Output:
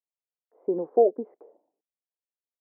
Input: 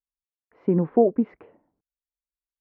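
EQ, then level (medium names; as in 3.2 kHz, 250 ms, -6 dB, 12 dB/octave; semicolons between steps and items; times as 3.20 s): Butterworth band-pass 540 Hz, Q 1.3; 0.0 dB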